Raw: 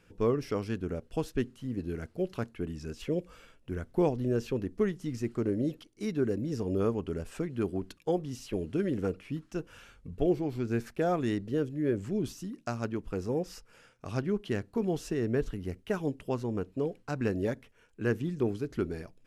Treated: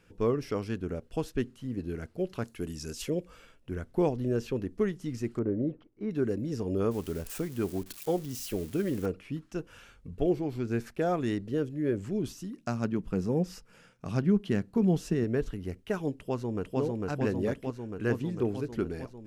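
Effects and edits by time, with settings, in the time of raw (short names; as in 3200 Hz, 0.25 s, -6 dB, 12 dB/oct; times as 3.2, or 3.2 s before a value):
2.44–3.1 tone controls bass -1 dB, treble +14 dB
5.39–6.11 LPF 1300 Hz
6.91–9.06 switching spikes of -34.5 dBFS
12.63–15.24 bell 180 Hz +10 dB
16.14–16.8 echo throw 0.45 s, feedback 75%, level -1 dB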